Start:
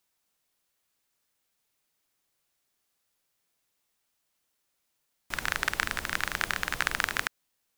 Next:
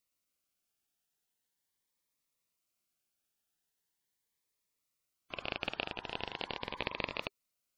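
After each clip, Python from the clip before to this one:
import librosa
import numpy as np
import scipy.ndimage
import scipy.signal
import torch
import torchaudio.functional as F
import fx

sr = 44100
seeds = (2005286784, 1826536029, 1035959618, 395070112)

y = fx.spec_gate(x, sr, threshold_db=-15, keep='strong')
y = y * np.sin(2.0 * np.pi * 1000.0 * np.arange(len(y)) / sr)
y = fx.notch_cascade(y, sr, direction='rising', hz=0.41)
y = y * 10.0 ** (-3.5 / 20.0)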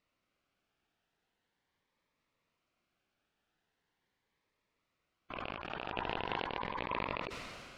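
y = fx.over_compress(x, sr, threshold_db=-45.0, ratio=-0.5)
y = scipy.signal.sosfilt(scipy.signal.butter(2, 2400.0, 'lowpass', fs=sr, output='sos'), y)
y = fx.sustainer(y, sr, db_per_s=25.0)
y = y * 10.0 ** (5.5 / 20.0)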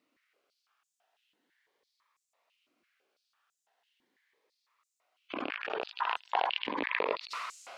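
y = fx.filter_held_highpass(x, sr, hz=6.0, low_hz=280.0, high_hz=7200.0)
y = y * 10.0 ** (3.0 / 20.0)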